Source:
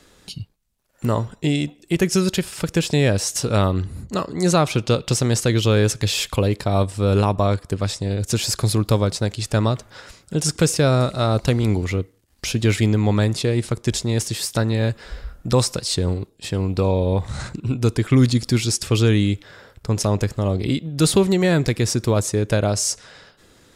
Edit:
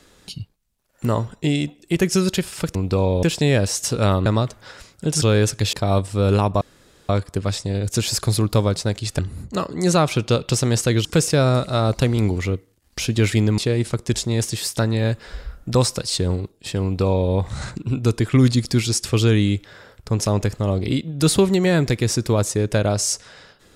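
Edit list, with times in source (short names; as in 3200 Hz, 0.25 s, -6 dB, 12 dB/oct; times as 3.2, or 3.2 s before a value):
3.78–5.64 swap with 9.55–10.51
6.15–6.57 cut
7.45 insert room tone 0.48 s
13.04–13.36 cut
16.61–17.09 copy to 2.75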